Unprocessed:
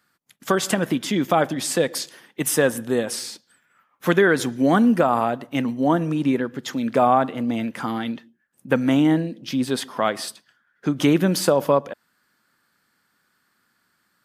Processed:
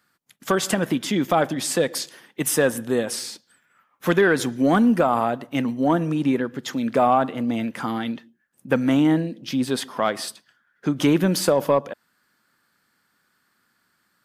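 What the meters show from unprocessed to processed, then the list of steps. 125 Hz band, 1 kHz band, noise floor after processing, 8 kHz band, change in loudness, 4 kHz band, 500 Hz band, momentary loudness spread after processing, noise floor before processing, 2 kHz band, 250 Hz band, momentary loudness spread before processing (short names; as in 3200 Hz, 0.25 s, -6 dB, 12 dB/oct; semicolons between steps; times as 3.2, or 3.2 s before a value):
-0.5 dB, -1.0 dB, -69 dBFS, 0.0 dB, -0.5 dB, -0.5 dB, -0.5 dB, 11 LU, -69 dBFS, -1.0 dB, -0.5 dB, 11 LU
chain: soft clip -6 dBFS, distortion -24 dB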